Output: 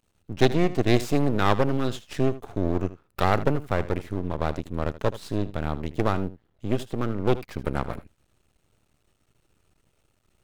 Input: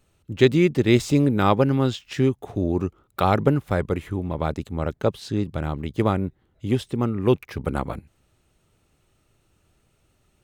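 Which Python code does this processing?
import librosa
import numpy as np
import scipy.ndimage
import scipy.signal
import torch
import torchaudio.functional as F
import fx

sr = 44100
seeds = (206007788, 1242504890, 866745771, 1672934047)

p1 = np.maximum(x, 0.0)
y = p1 + fx.echo_single(p1, sr, ms=78, db=-15.5, dry=0)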